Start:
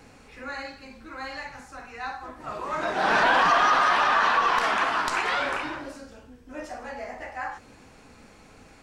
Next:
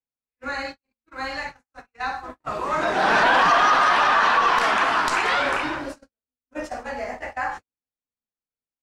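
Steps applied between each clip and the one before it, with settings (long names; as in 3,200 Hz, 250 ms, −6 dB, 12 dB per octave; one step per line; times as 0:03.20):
noise gate −38 dBFS, range −58 dB
in parallel at 0 dB: brickwall limiter −20 dBFS, peak gain reduction 10.5 dB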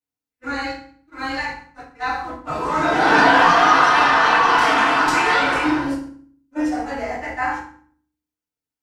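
feedback delay network reverb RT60 0.5 s, low-frequency decay 1.55×, high-frequency decay 0.85×, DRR −9.5 dB
level −6 dB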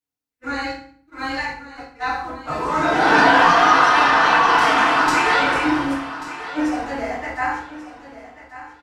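repeating echo 1,138 ms, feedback 28%, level −14.5 dB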